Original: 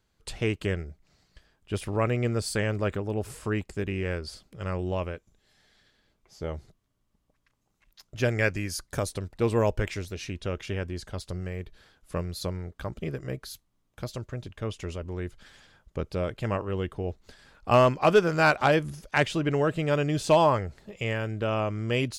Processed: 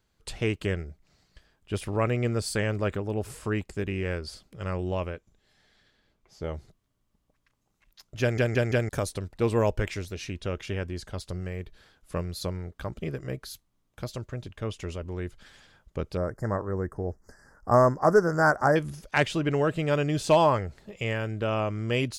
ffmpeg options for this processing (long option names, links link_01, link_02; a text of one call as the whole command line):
ffmpeg -i in.wav -filter_complex "[0:a]asettb=1/sr,asplit=3[link_01][link_02][link_03];[link_01]atrim=end=5.104[link_04];[link_02]atrim=start=5.1:end=6.44,asetpts=PTS-STARTPTS,afade=type=in:duration=0.004:curve=qsin,afade=type=out:start_time=1.336:duration=0.004:curve=qsin,highshelf=frequency=6000:gain=-5.5[link_05];[link_03]atrim=start=6.436[link_06];[link_04][link_05]acrossfade=duration=0.004:curve1=hsin:curve2=qsin[link_07];[link_07][link_06]acrossfade=duration=0.004:curve1=qsin:curve2=hsin,asettb=1/sr,asplit=3[link_08][link_09][link_10];[link_08]atrim=end=16.174[link_11];[link_09]atrim=start=16.17:end=18.76,asetpts=PTS-STARTPTS,afade=type=in:duration=0.004:curve=qsin,afade=type=out:start_time=2.586:duration=0.004:curve=qsin,asuperstop=centerf=3100:order=12:qfactor=1[link_12];[link_10]atrim=start=18.756[link_13];[link_11][link_12]acrossfade=duration=0.004:curve1=hsin:curve2=qsin[link_14];[link_14][link_13]acrossfade=duration=0.004:curve1=qsin:curve2=hsin,asplit=5[link_15][link_16][link_17][link_18][link_19];[link_15]atrim=end=8.382[link_20];[link_16]atrim=start=8.208:end=8.382[link_21];[link_17]atrim=start=8.208:end=8.382[link_22];[link_18]atrim=start=8.208:end=8.382[link_23];[link_19]atrim=start=8.888[link_24];[link_20][link_21]acrossfade=duration=0.004:curve1=hsin:curve2=hsin[link_25];[link_25][link_22]acrossfade=duration=0.004:curve1=hsin:curve2=hsin[link_26];[link_26][link_23]acrossfade=duration=0.004:curve1=hsin:curve2=hsin[link_27];[link_27][link_24]acrossfade=duration=0.004:curve1=hsin:curve2=hsin" out.wav